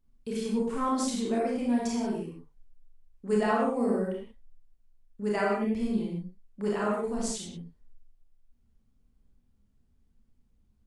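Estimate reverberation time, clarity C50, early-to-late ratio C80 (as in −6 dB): non-exponential decay, 0.0 dB, 3.5 dB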